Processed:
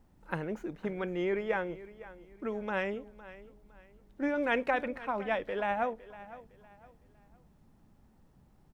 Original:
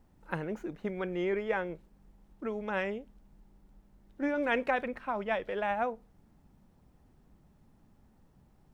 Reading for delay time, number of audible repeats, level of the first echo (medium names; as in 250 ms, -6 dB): 509 ms, 2, -17.0 dB